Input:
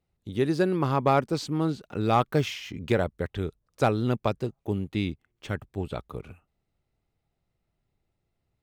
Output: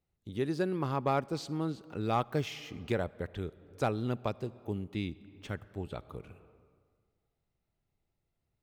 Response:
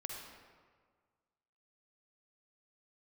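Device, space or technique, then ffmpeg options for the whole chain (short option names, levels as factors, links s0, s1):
ducked reverb: -filter_complex "[0:a]asplit=3[s0][s1][s2];[1:a]atrim=start_sample=2205[s3];[s1][s3]afir=irnorm=-1:irlink=0[s4];[s2]apad=whole_len=380252[s5];[s4][s5]sidechaincompress=threshold=0.0158:ratio=5:attack=11:release=390,volume=0.596[s6];[s0][s6]amix=inputs=2:normalize=0,volume=0.398"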